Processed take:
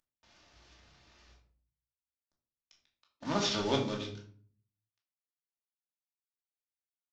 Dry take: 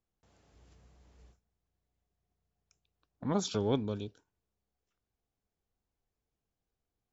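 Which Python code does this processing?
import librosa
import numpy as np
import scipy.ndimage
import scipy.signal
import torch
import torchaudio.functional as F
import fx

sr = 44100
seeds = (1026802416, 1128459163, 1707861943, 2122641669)

y = fx.cvsd(x, sr, bps=32000)
y = fx.tilt_shelf(y, sr, db=-7.0, hz=730.0)
y = fx.room_shoebox(y, sr, seeds[0], volume_m3=490.0, walls='furnished', distance_m=2.6)
y = y * librosa.db_to_amplitude(-1.0)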